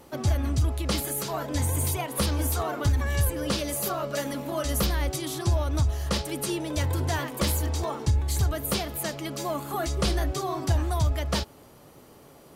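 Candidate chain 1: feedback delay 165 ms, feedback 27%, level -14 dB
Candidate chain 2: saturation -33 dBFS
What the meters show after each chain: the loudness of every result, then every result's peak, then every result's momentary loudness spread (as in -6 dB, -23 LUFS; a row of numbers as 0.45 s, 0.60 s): -27.5 LUFS, -36.0 LUFS; -15.0 dBFS, -33.0 dBFS; 5 LU, 2 LU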